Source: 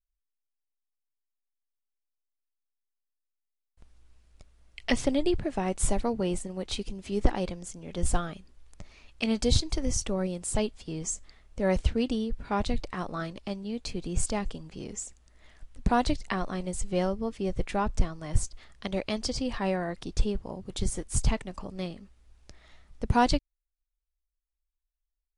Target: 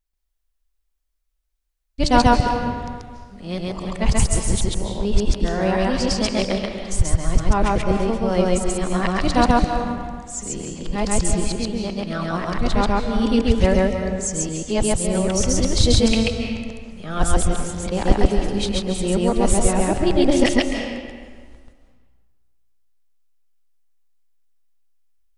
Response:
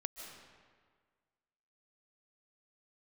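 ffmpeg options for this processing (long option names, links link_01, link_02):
-filter_complex "[0:a]areverse,bandreject=frequency=146.5:width_type=h:width=4,bandreject=frequency=293:width_type=h:width=4,bandreject=frequency=439.5:width_type=h:width=4,bandreject=frequency=586:width_type=h:width=4,bandreject=frequency=732.5:width_type=h:width=4,bandreject=frequency=879:width_type=h:width=4,bandreject=frequency=1025.5:width_type=h:width=4,bandreject=frequency=1172:width_type=h:width=4,bandreject=frequency=1318.5:width_type=h:width=4,bandreject=frequency=1465:width_type=h:width=4,bandreject=frequency=1611.5:width_type=h:width=4,bandreject=frequency=1758:width_type=h:width=4,bandreject=frequency=1904.5:width_type=h:width=4,bandreject=frequency=2051:width_type=h:width=4,bandreject=frequency=2197.5:width_type=h:width=4,bandreject=frequency=2344:width_type=h:width=4,bandreject=frequency=2490.5:width_type=h:width=4,bandreject=frequency=2637:width_type=h:width=4,bandreject=frequency=2783.5:width_type=h:width=4,bandreject=frequency=2930:width_type=h:width=4,bandreject=frequency=3076.5:width_type=h:width=4,asplit=2[link_01][link_02];[1:a]atrim=start_sample=2205,adelay=135[link_03];[link_02][link_03]afir=irnorm=-1:irlink=0,volume=3dB[link_04];[link_01][link_04]amix=inputs=2:normalize=0,volume=6.5dB"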